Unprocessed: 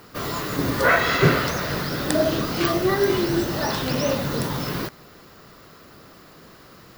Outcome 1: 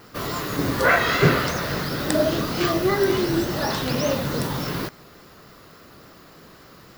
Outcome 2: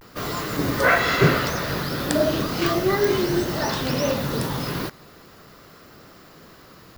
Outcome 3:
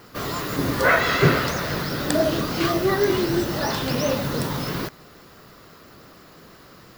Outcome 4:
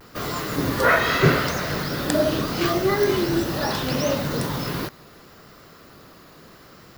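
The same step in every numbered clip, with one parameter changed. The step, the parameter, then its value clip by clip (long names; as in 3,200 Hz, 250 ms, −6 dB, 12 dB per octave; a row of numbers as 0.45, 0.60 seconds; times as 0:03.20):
pitch vibrato, speed: 3.5, 0.38, 6, 0.77 Hertz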